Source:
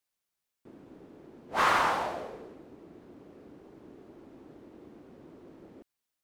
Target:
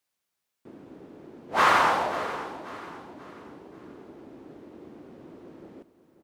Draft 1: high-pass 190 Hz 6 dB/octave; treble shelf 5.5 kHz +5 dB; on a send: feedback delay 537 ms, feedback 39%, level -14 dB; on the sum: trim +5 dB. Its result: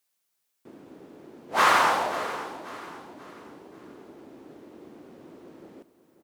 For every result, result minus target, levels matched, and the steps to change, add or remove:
8 kHz band +4.5 dB; 125 Hz band -3.5 dB
change: treble shelf 5.5 kHz -3 dB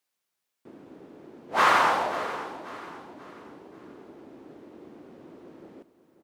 125 Hz band -3.0 dB
change: high-pass 79 Hz 6 dB/octave

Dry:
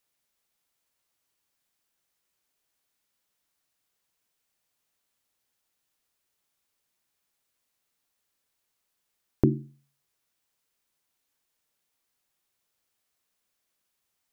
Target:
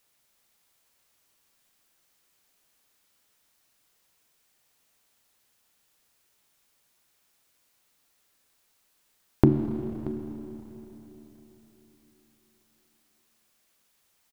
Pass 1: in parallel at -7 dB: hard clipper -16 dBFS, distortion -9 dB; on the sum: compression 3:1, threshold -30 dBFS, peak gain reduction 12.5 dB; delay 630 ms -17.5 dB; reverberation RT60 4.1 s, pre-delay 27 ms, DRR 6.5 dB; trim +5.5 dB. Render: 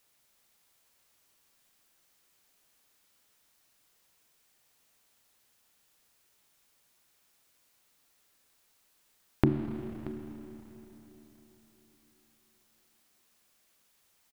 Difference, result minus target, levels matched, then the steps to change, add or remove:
compression: peak gain reduction +6.5 dB
change: compression 3:1, threshold -20 dBFS, peak gain reduction 6 dB

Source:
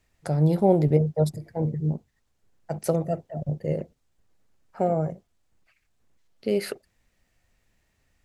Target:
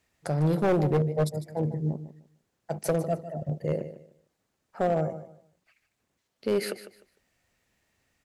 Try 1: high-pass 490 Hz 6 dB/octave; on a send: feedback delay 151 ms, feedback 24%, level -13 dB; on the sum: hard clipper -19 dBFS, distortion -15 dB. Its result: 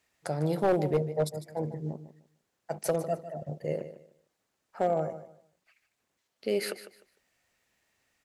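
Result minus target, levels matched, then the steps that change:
125 Hz band -4.0 dB
change: high-pass 160 Hz 6 dB/octave

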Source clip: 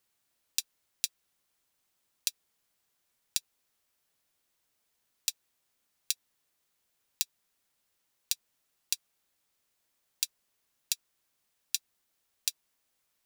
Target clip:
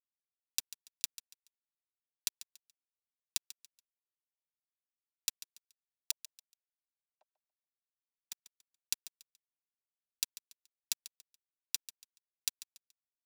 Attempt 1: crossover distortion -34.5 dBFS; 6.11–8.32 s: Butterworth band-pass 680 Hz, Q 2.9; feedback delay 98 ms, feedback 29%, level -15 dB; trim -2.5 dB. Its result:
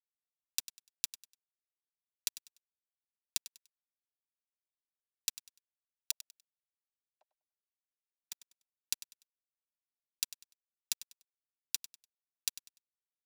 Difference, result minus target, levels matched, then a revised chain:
echo 44 ms early
crossover distortion -34.5 dBFS; 6.11–8.32 s: Butterworth band-pass 680 Hz, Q 2.9; feedback delay 142 ms, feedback 29%, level -15 dB; trim -2.5 dB

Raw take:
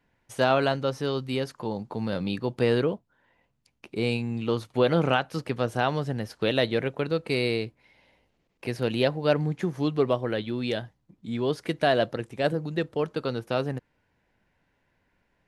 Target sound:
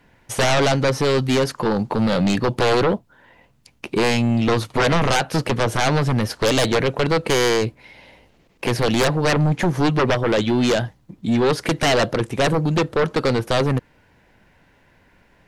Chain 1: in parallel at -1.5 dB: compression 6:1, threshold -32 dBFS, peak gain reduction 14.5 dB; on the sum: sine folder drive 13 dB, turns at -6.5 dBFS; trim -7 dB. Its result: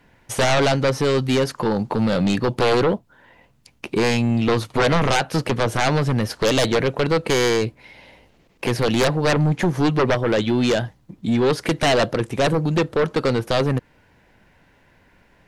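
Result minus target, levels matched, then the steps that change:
compression: peak gain reduction +5.5 dB
change: compression 6:1, threshold -25.5 dBFS, peak gain reduction 9 dB

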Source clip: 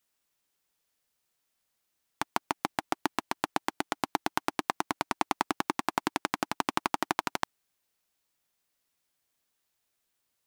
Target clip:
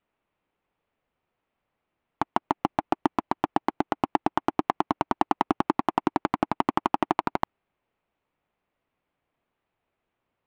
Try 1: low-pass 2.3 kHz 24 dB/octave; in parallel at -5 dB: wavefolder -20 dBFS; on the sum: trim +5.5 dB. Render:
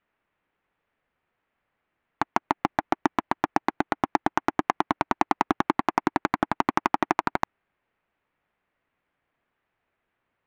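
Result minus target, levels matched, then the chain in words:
2 kHz band +5.0 dB
low-pass 2.3 kHz 24 dB/octave; peaking EQ 1.7 kHz -7.5 dB 0.87 oct; in parallel at -5 dB: wavefolder -20 dBFS; on the sum: trim +5.5 dB

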